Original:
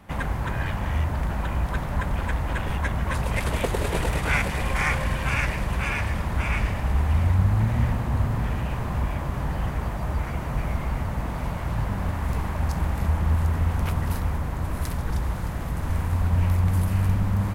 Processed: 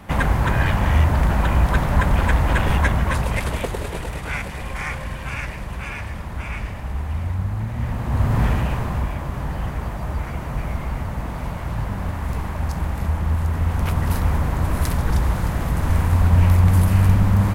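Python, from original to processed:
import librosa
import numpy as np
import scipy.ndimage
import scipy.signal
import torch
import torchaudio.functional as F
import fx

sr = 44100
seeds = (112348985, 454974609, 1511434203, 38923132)

y = fx.gain(x, sr, db=fx.line((2.79, 8.5), (4.02, -4.0), (7.74, -4.0), (8.43, 8.0), (9.15, 1.0), (13.44, 1.0), (14.38, 7.0)))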